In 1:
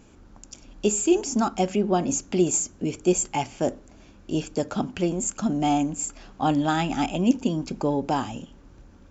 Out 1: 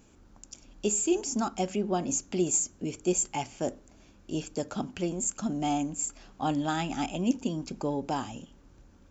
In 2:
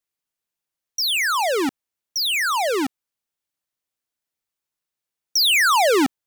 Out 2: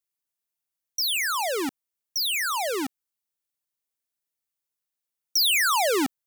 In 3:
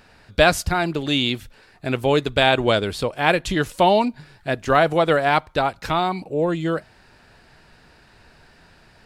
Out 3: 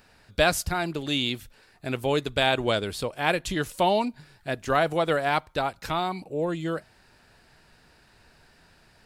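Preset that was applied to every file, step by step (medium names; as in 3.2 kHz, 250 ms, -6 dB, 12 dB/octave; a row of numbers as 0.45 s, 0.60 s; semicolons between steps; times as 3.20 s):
treble shelf 6.9 kHz +8.5 dB; trim -6.5 dB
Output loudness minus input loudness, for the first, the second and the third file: -5.5 LU, -4.5 LU, -6.0 LU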